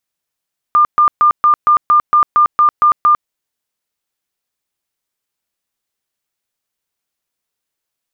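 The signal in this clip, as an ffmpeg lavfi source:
-f lavfi -i "aevalsrc='0.501*sin(2*PI*1200*mod(t,0.23))*lt(mod(t,0.23),119/1200)':d=2.53:s=44100"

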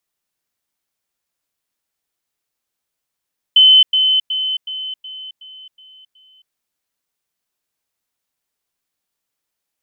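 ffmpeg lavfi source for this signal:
-f lavfi -i "aevalsrc='pow(10,(-5-6*floor(t/0.37))/20)*sin(2*PI*3050*t)*clip(min(mod(t,0.37),0.27-mod(t,0.37))/0.005,0,1)':d=2.96:s=44100"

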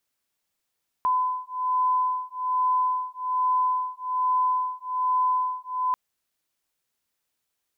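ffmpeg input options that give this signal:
-f lavfi -i "aevalsrc='0.0562*(sin(2*PI*1010*t)+sin(2*PI*1011.2*t))':d=4.89:s=44100"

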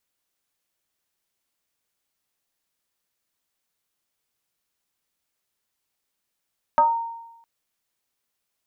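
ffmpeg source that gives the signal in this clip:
-f lavfi -i "aevalsrc='0.266*pow(10,-3*t/0.96)*sin(2*PI*923*t+0.93*pow(10,-3*t/0.32)*sin(2*PI*0.36*923*t))':d=0.66:s=44100"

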